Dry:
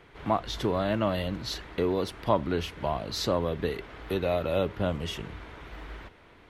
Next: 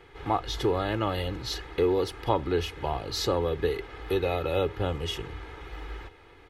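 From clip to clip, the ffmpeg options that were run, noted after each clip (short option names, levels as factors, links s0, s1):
-af "aecho=1:1:2.4:0.67"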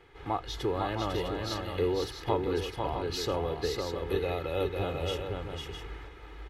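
-af "aecho=1:1:501|656:0.631|0.398,volume=0.562"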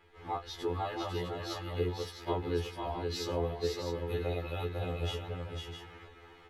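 -af "afftfilt=real='re*2*eq(mod(b,4),0)':imag='im*2*eq(mod(b,4),0)':win_size=2048:overlap=0.75,volume=0.794"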